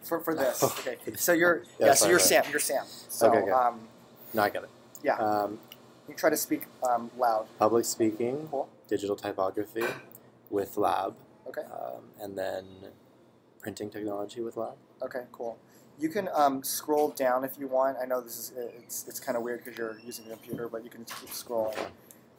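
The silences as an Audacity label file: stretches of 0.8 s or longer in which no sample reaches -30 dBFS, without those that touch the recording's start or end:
12.590000	13.650000	silence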